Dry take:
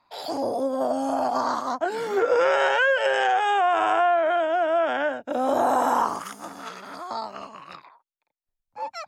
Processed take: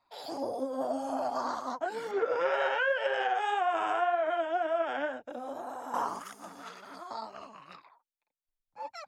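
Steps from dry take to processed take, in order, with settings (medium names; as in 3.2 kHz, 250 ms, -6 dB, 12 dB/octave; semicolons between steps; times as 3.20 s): 2.11–3.35 s: low-pass 4.4 kHz 12 dB/octave; 5.19–5.94 s: compression 5:1, threshold -30 dBFS, peak gain reduction 11.5 dB; flange 1.9 Hz, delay 1.2 ms, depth 6.5 ms, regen +34%; trim -4.5 dB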